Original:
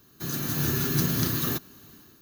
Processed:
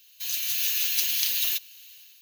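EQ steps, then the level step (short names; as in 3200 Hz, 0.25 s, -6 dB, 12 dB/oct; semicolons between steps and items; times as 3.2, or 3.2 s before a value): HPF 1200 Hz 12 dB/oct; resonant high shelf 1900 Hz +11.5 dB, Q 3; -7.5 dB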